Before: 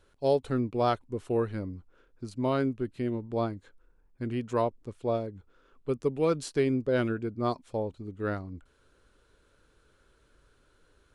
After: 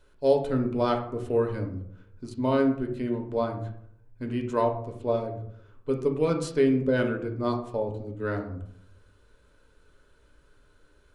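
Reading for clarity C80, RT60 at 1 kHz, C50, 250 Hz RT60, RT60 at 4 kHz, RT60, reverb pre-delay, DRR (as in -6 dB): 12.5 dB, 0.65 s, 8.5 dB, 0.90 s, 0.40 s, 0.70 s, 3 ms, 2.5 dB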